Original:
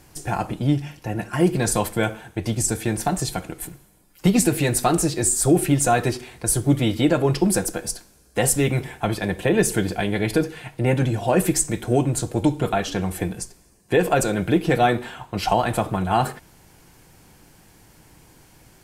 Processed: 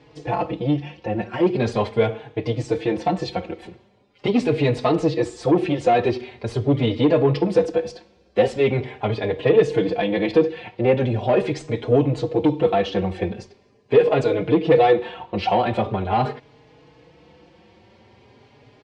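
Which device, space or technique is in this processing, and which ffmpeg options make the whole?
barber-pole flanger into a guitar amplifier: -filter_complex "[0:a]asplit=2[link_01][link_02];[link_02]adelay=4.3,afreqshift=0.42[link_03];[link_01][link_03]amix=inputs=2:normalize=1,asoftclip=type=tanh:threshold=-16.5dB,highpass=95,equalizer=frequency=170:width_type=q:width=4:gain=-5,equalizer=frequency=480:width_type=q:width=4:gain=9,equalizer=frequency=1500:width_type=q:width=4:gain=-8,lowpass=frequency=4000:width=0.5412,lowpass=frequency=4000:width=1.3066,volume=5dB"

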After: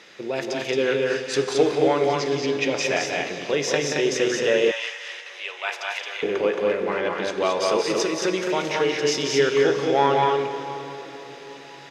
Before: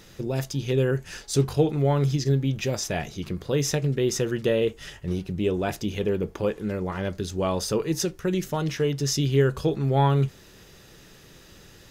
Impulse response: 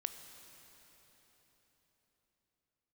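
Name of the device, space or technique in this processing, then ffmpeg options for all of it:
station announcement: -filter_complex "[0:a]highpass=410,lowpass=4900,equalizer=frequency=2200:width_type=o:width=0.52:gain=6,aecho=1:1:180.8|221.6:0.501|0.708[link_01];[1:a]atrim=start_sample=2205[link_02];[link_01][link_02]afir=irnorm=-1:irlink=0,asettb=1/sr,asplit=3[link_03][link_04][link_05];[link_03]atrim=end=4.714[link_06];[link_04]atrim=start=4.71:end=6.23,asetpts=PTS-STARTPTS,afade=type=in:duration=0.004:curve=qsin,afade=type=out:start_time=1.516:duration=0.004:curve=qsin,highpass=frequency=830:width=0.5412,highpass=frequency=830:width=1.3066[link_07];[link_05]atrim=start=6.226[link_08];[link_06][link_07]acrossfade=duration=0.004:curve1=hsin:curve2=qsin[link_09];[link_09][link_08]acrossfade=duration=0.004:curve1=qsin:curve2=hsin,volume=6dB"

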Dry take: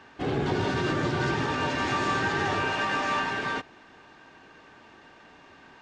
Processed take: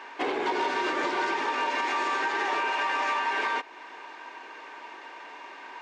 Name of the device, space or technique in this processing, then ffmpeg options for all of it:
laptop speaker: -af "highpass=frequency=330:width=0.5412,highpass=frequency=330:width=1.3066,equalizer=frequency=970:width_type=o:width=0.21:gain=11.5,equalizer=frequency=2200:width_type=o:width=0.48:gain=7,alimiter=level_in=0.5dB:limit=-24dB:level=0:latency=1:release=283,volume=-0.5dB,volume=5.5dB"

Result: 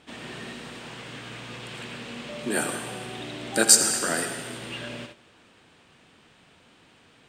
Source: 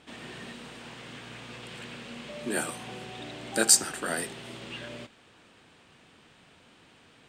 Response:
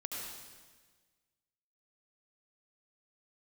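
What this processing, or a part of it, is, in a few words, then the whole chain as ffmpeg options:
keyed gated reverb: -filter_complex "[0:a]asplit=3[link_01][link_02][link_03];[1:a]atrim=start_sample=2205[link_04];[link_02][link_04]afir=irnorm=-1:irlink=0[link_05];[link_03]apad=whole_len=321394[link_06];[link_05][link_06]sidechaingate=range=-15dB:threshold=-49dB:ratio=16:detection=peak,volume=-2dB[link_07];[link_01][link_07]amix=inputs=2:normalize=0"

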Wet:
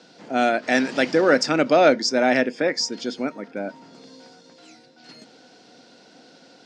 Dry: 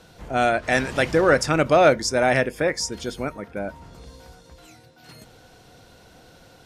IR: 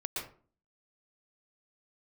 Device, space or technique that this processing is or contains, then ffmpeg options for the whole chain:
television speaker: -filter_complex "[0:a]highpass=frequency=190:width=0.5412,highpass=frequency=190:width=1.3066,equalizer=frequency=260:width_type=q:width=4:gain=7,equalizer=frequency=1100:width_type=q:width=4:gain=-5,equalizer=frequency=4800:width_type=q:width=4:gain=7,lowpass=frequency=7200:width=0.5412,lowpass=frequency=7200:width=1.3066,asettb=1/sr,asplit=3[link_01][link_02][link_03];[link_01]atrim=end=1.534[link_04];[link_02]atrim=start=1.53:end=3.32,asetpts=PTS-STARTPTS,afade=type=in:duration=0.004:curve=qsin,afade=type=out:start_time=1.786:duration=0.004:curve=qsin,lowpass=8000[link_05];[link_03]atrim=start=3.316[link_06];[link_04][link_05]acrossfade=duration=0.004:curve1=hsin:curve2=qsin[link_07];[link_07][link_06]acrossfade=duration=0.004:curve1=qsin:curve2=hsin"

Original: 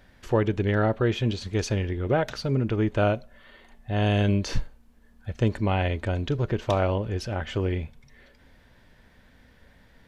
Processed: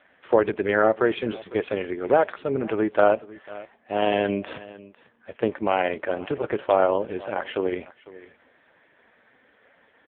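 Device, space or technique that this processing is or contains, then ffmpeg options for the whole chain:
satellite phone: -filter_complex "[0:a]asettb=1/sr,asplit=3[link_01][link_02][link_03];[link_01]atrim=end=5.604[link_04];[link_02]atrim=start=5.6:end=6.31,asetpts=PTS-STARTPTS,afade=type=in:duration=0.004:curve=qsin,afade=type=out:start_time=0.706:duration=0.004:curve=qsin,acrossover=split=3800[link_05][link_06];[link_06]acompressor=threshold=-59dB:ratio=4:attack=1:release=60[link_07];[link_05][link_07]amix=inputs=2:normalize=0[link_08];[link_03]atrim=start=6.306[link_09];[link_04][link_08]acrossfade=duration=0.004:curve1=hsin:curve2=qsin[link_10];[link_10][link_09]acrossfade=duration=0.004:curve1=qsin:curve2=hsin,highpass=390,lowpass=3000,aecho=1:1:500:0.112,volume=7.5dB" -ar 8000 -c:a libopencore_amrnb -b:a 5150

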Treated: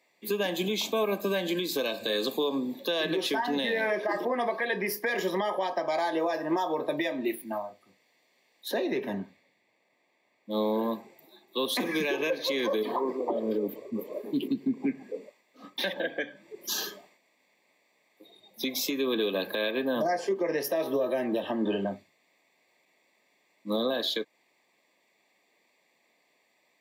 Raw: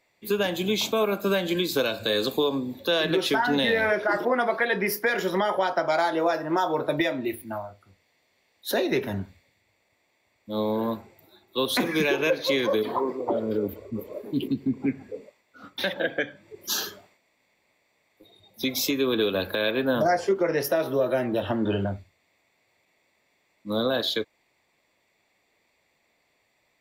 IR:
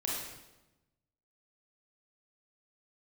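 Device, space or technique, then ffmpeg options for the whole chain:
PA system with an anti-feedback notch: -filter_complex "[0:a]highpass=frequency=180:width=0.5412,highpass=frequency=180:width=1.3066,asuperstop=centerf=1400:order=12:qfactor=5.7,alimiter=limit=-19.5dB:level=0:latency=1:release=188,asettb=1/sr,asplit=3[link_01][link_02][link_03];[link_01]atrim=end=8.684[link_04];[link_02]atrim=start=8.68:end=10.51,asetpts=PTS-STARTPTS,afade=type=in:duration=0.004:curve=qsin,afade=type=out:start_time=1.826:duration=0.004:curve=qsin,highshelf=frequency=4600:gain=-10[link_05];[link_03]atrim=start=10.506[link_06];[link_04][link_05]acrossfade=duration=0.004:curve1=hsin:curve2=qsin[link_07];[link_07][link_06]acrossfade=duration=0.004:curve1=qsin:curve2=hsin"

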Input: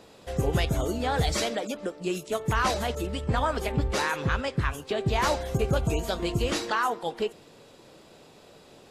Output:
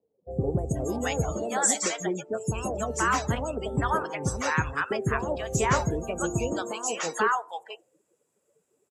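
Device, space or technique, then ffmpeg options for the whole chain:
budget condenser microphone: -filter_complex "[0:a]asettb=1/sr,asplit=3[link_01][link_02][link_03];[link_01]atrim=end=3.364[link_04];[link_02]atrim=start=3.36:end=4.08,asetpts=PTS-STARTPTS,afade=type=in:duration=0.004:curve=qsin,afade=type=out:start_time=0.716:duration=0.004:curve=qsin,bandreject=frequency=6900:width=8.4[link_05];[link_03]atrim=start=4.076[link_06];[link_04][link_05]acrossfade=duration=0.004:curve1=hsin:curve2=qsin[link_07];[link_07][link_06]acrossfade=duration=0.004:curve1=qsin:curve2=hsin,afftdn=noise_reduction=27:noise_floor=-37,highpass=78,equalizer=frequency=1500:width_type=o:width=2.7:gain=3.5,highshelf=frequency=5600:width_type=q:width=3:gain=11.5,acrossover=split=690|6000[link_08][link_09][link_10];[link_10]adelay=310[link_11];[link_09]adelay=480[link_12];[link_08][link_12][link_11]amix=inputs=3:normalize=0"

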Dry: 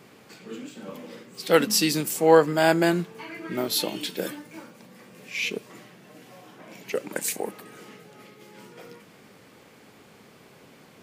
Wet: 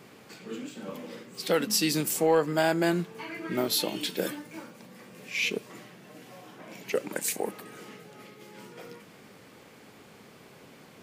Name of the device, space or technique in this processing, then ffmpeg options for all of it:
soft clipper into limiter: -af "asoftclip=type=tanh:threshold=-4.5dB,alimiter=limit=-14dB:level=0:latency=1:release=338"

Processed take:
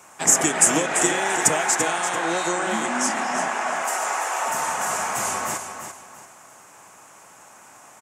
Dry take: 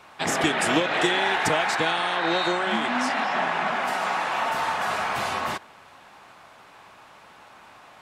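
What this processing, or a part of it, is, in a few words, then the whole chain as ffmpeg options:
budget condenser microphone: -filter_complex "[0:a]asettb=1/sr,asplit=3[link_01][link_02][link_03];[link_01]atrim=end=3.484[link_04];[link_02]atrim=start=3.48:end=4.47,asetpts=PTS-STARTPTS,afade=type=in:duration=0.004:curve=qsin,afade=type=out:start_time=0.986:duration=0.004:curve=qsin,highpass=frequency=360:width=0.5412,highpass=frequency=360:width=1.3066[link_05];[link_03]atrim=start=4.466[link_06];[link_04][link_05]acrossfade=duration=0.004:curve1=hsin:curve2=qsin[link_07];[link_07][link_06]acrossfade=duration=0.004:curve1=qsin:curve2=hsin,highpass=97,highshelf=frequency=5300:width_type=q:width=3:gain=10.5,aecho=1:1:340|680|1020:0.376|0.109|0.0316"

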